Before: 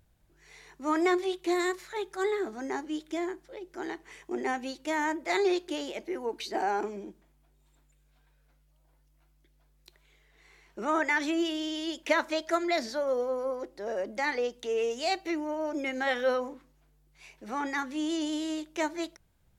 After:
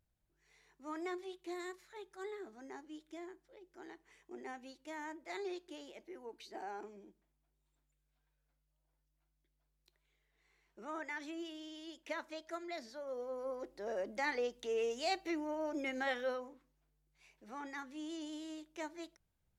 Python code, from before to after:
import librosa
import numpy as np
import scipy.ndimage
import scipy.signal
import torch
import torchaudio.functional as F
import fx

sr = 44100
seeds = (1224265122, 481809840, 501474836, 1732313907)

y = fx.gain(x, sr, db=fx.line((12.99, -16.0), (13.68, -6.5), (16.0, -6.5), (16.45, -13.5)))